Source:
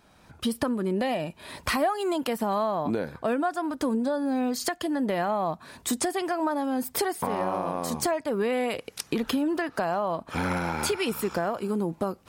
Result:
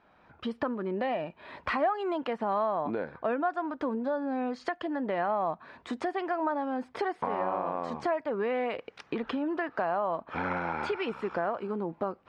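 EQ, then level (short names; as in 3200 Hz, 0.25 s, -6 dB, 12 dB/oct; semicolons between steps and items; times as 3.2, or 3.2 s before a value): LPF 2100 Hz 12 dB/oct; air absorption 52 m; low shelf 270 Hz -12 dB; 0.0 dB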